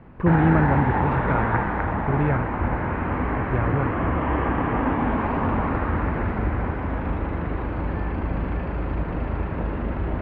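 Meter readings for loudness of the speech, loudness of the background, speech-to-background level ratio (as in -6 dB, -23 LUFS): -24.5 LUFS, -25.5 LUFS, 1.0 dB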